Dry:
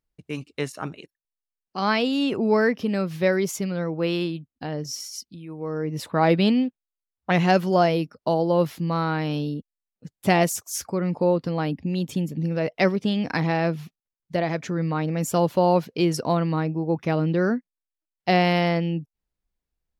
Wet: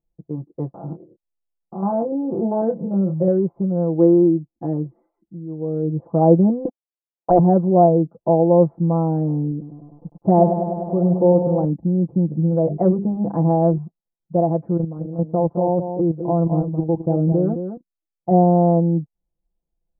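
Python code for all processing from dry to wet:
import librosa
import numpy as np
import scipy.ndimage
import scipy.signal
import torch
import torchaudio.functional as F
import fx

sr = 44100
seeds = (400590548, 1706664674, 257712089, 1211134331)

y = fx.chain(x, sr, fx.spec_steps(hold_ms=100),
    fx.doubler(ms=26.0, db=-6.5), at=(0.74, 3.28))
y = fx.chain(y, sr, fx.lowpass_res(hz=2000.0, q=5.6),
    fx.peak_eq(hz=330.0, db=7.0, octaves=0.35), at=(3.95, 5.28))
y = fx.chain(y, sr, fx.highpass(hz=320.0, slope=24),
    fx.leveller(passes=3), at=(6.65, 7.39))
y = fx.chain(y, sr, fx.low_shelf(hz=86.0, db=-6.5),
    fx.echo_crushed(ms=100, feedback_pct=80, bits=8, wet_db=-8.0), at=(9.51, 11.65))
y = fx.chain(y, sr, fx.high_shelf(hz=3100.0, db=11.5),
    fx.hum_notches(base_hz=50, count=8),
    fx.sustainer(db_per_s=96.0), at=(12.5, 13.78))
y = fx.chain(y, sr, fx.level_steps(step_db=12),
    fx.echo_single(ms=214, db=-8.0), at=(14.77, 18.31))
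y = scipy.signal.sosfilt(scipy.signal.butter(6, 860.0, 'lowpass', fs=sr, output='sos'), y)
y = y + 0.85 * np.pad(y, (int(5.9 * sr / 1000.0), 0))[:len(y)]
y = F.gain(torch.from_numpy(y), 2.0).numpy()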